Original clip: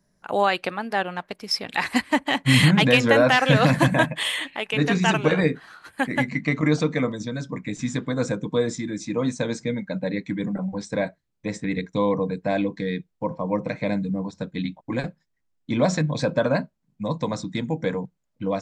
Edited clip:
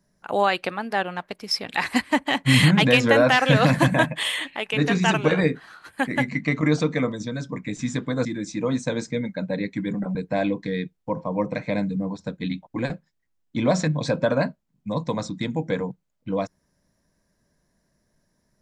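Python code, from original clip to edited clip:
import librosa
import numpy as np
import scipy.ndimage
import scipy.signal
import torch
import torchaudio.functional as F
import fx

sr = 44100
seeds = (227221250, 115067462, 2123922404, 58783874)

y = fx.edit(x, sr, fx.cut(start_s=8.25, length_s=0.53),
    fx.cut(start_s=10.68, length_s=1.61), tone=tone)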